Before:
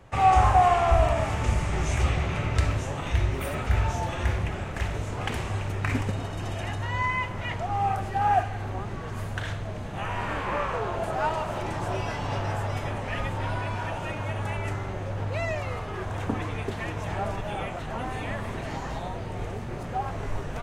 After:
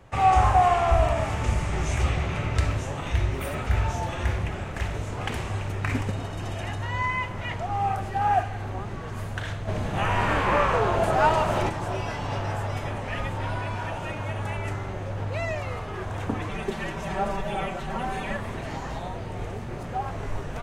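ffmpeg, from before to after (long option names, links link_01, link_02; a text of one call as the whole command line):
ffmpeg -i in.wav -filter_complex "[0:a]asplit=3[link_01][link_02][link_03];[link_01]afade=type=out:start_time=9.67:duration=0.02[link_04];[link_02]acontrast=71,afade=type=in:start_time=9.67:duration=0.02,afade=type=out:start_time=11.68:duration=0.02[link_05];[link_03]afade=type=in:start_time=11.68:duration=0.02[link_06];[link_04][link_05][link_06]amix=inputs=3:normalize=0,asettb=1/sr,asplit=3[link_07][link_08][link_09];[link_07]atrim=end=16.494[link_10];[link_08]atrim=start=16.49:end=18.37,asetpts=PTS-STARTPTS,afade=type=in:duration=0.004:curve=qsin,afade=type=out:start_time=1.876:duration=0.004:curve=qsin,aecho=1:1:5.2:0.84,atrim=end_sample=82908[link_11];[link_09]atrim=start=18.366[link_12];[link_10][link_11]acrossfade=duration=0.004:curve1=hsin:curve2=qsin[link_13];[link_13][link_12]acrossfade=duration=0.004:curve1=qsin:curve2=hsin" out.wav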